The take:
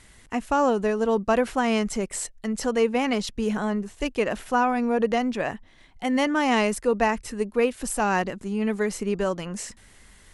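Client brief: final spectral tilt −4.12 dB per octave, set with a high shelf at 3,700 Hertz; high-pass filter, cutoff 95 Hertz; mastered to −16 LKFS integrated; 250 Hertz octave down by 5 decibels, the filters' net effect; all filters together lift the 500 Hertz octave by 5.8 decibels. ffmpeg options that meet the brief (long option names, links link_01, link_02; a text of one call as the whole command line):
ffmpeg -i in.wav -af "highpass=95,equalizer=frequency=250:width_type=o:gain=-7.5,equalizer=frequency=500:width_type=o:gain=8.5,highshelf=frequency=3700:gain=-3,volume=6dB" out.wav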